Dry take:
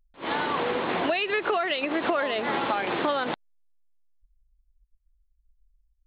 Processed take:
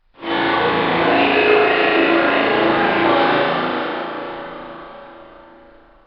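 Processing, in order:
variable-slope delta modulation 64 kbit/s
dense smooth reverb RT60 4.5 s, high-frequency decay 0.9×, DRR −4.5 dB
downsampling to 11,025 Hz
flutter between parallel walls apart 6.1 metres, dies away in 0.96 s
level +3 dB
Opus 48 kbit/s 48,000 Hz

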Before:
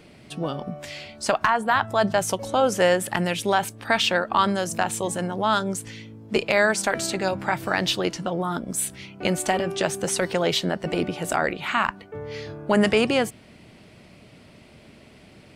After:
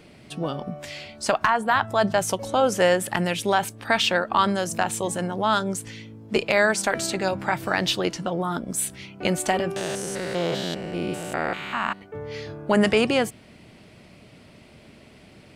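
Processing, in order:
0:09.76–0:12.02: spectrum averaged block by block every 200 ms

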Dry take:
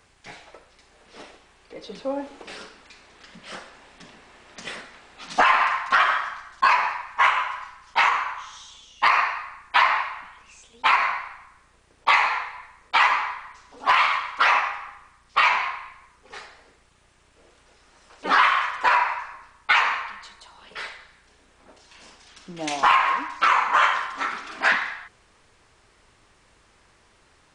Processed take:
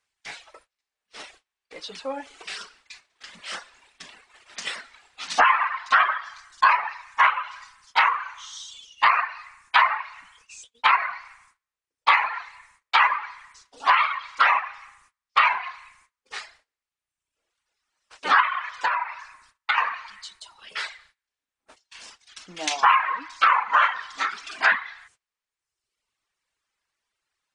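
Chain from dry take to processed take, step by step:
noise gate −50 dBFS, range −24 dB
tilt shelving filter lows −8 dB, about 800 Hz
treble cut that deepens with the level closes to 2,200 Hz, closed at −13.5 dBFS
dynamic equaliser 2,300 Hz, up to −4 dB, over −30 dBFS, Q 1.4
reverb reduction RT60 1.1 s
0:18.40–0:19.78: downward compressor 4 to 1, threshold −21 dBFS, peak gain reduction 7.5 dB

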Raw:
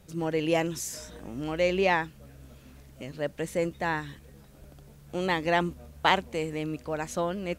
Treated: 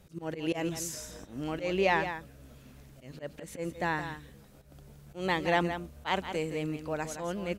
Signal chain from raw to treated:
volume swells 133 ms
single-tap delay 169 ms −9.5 dB
level −2 dB

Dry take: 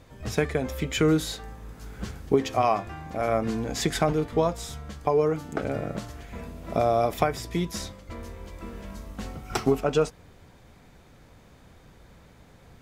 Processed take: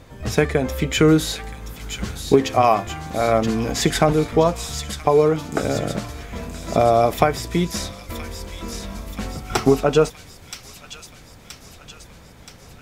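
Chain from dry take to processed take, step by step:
delay with a high-pass on its return 975 ms, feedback 60%, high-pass 2,800 Hz, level −6 dB
level +7 dB

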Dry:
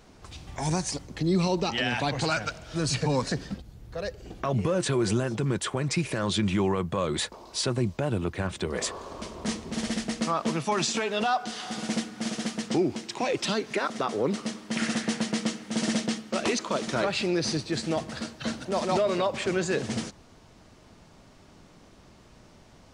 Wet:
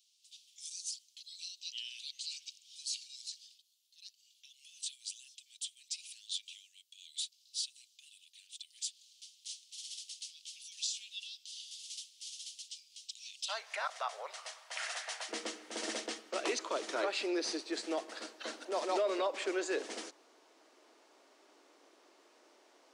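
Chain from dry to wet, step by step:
Butterworth high-pass 3,000 Hz 48 dB per octave, from 0:13.48 610 Hz, from 0:15.28 300 Hz
level −7 dB

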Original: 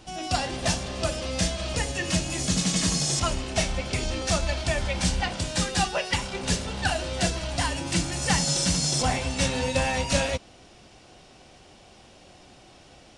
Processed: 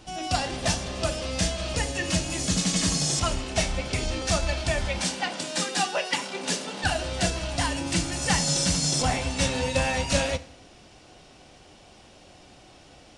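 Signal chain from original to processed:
0:04.99–0:06.84: high-pass filter 200 Hz 24 dB per octave
feedback delay network reverb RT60 0.78 s, low-frequency decay 0.95×, high-frequency decay 0.9×, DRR 14 dB

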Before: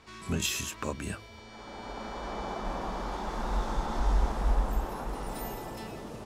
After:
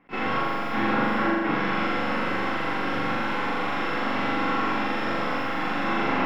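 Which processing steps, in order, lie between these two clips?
noise gate with hold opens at −38 dBFS
flat-topped bell 1,000 Hz +12 dB
downward compressor, threshold −25 dBFS, peak gain reduction 7 dB
brickwall limiter −21.5 dBFS, peak gain reduction 10 dB
automatic gain control gain up to 3 dB
wrap-around overflow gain 34.5 dB
harmonic generator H 4 −18 dB, 7 −12 dB, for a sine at −34.5 dBFS
full-wave rectification
high-frequency loss of the air 320 metres
flutter between parallel walls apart 7.2 metres, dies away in 1.5 s
convolution reverb RT60 0.15 s, pre-delay 3 ms, DRR 2 dB
level that may rise only so fast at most 420 dB per second
level +8 dB

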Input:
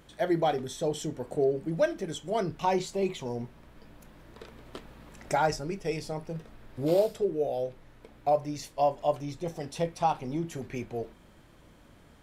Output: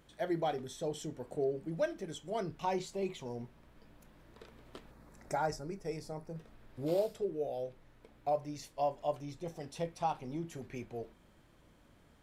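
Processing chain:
0:04.91–0:06.37: parametric band 3,000 Hz −12 dB 0.66 octaves
level −7.5 dB

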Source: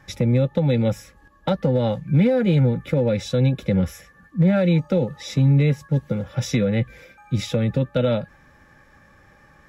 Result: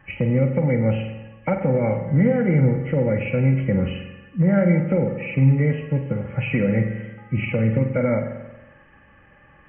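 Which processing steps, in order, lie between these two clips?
hearing-aid frequency compression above 1,900 Hz 4 to 1
spring reverb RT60 1.1 s, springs 45 ms, chirp 40 ms, DRR 5.5 dB
level −1 dB

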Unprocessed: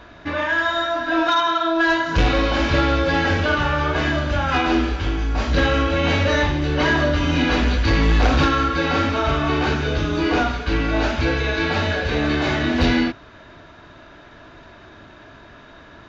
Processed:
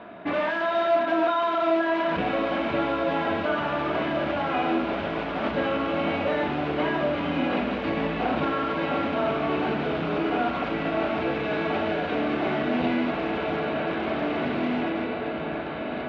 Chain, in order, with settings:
feedback delay with all-pass diffusion 1,800 ms, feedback 54%, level −7 dB
in parallel at −3.5 dB: wrap-around overflow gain 20 dB
on the sum: brickwall limiter −12.5 dBFS, peak gain reduction 7 dB
loudspeaker in its box 190–2,900 Hz, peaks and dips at 200 Hz +10 dB, 400 Hz +3 dB, 680 Hz +7 dB, 1,700 Hz −5 dB
level −4.5 dB

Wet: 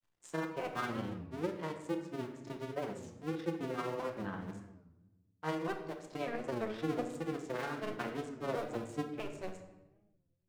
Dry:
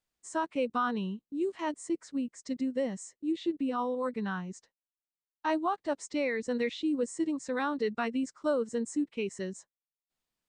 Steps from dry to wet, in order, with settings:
sub-harmonics by changed cycles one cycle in 2, muted
downward expander −51 dBFS
high-shelf EQ 3,700 Hz −9 dB
upward compression, threshold −45 dBFS
amplitude tremolo 14 Hz, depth 48%
granular cloud, spray 22 ms, pitch spread up and down by 0 semitones
rectangular room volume 530 cubic metres, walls mixed, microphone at 0.86 metres
wow of a warped record 33 1/3 rpm, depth 160 cents
level −1.5 dB

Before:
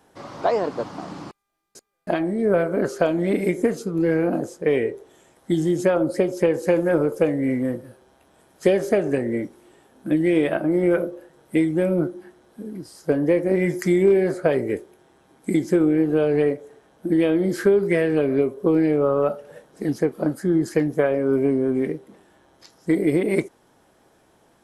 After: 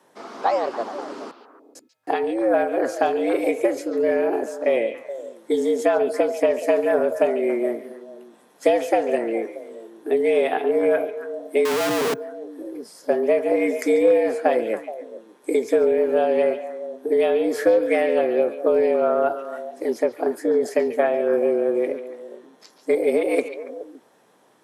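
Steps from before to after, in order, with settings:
echo through a band-pass that steps 141 ms, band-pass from 3,100 Hz, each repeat −1.4 octaves, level −6 dB
0:11.65–0:12.14: comparator with hysteresis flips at −38 dBFS
frequency shifter +110 Hz

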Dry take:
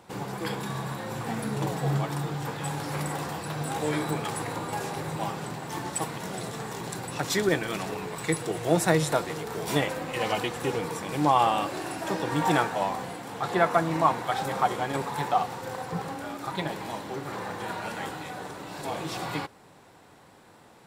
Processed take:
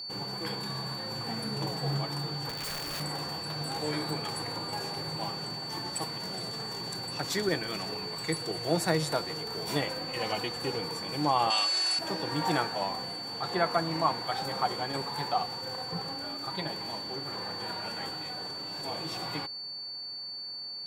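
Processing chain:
0:02.49–0:03.00: wrap-around overflow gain 27.5 dB
steady tone 4,500 Hz −32 dBFS
0:11.50–0:11.99: meter weighting curve ITU-R 468
level −5 dB

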